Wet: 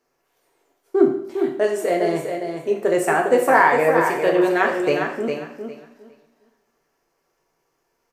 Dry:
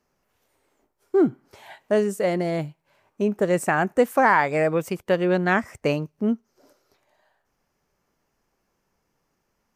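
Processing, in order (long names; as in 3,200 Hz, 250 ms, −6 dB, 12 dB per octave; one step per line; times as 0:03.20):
low shelf with overshoot 250 Hz −8.5 dB, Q 1.5
tempo change 1.2×
repeating echo 406 ms, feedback 19%, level −6.5 dB
coupled-rooms reverb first 0.6 s, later 2.1 s, from −26 dB, DRR 0.5 dB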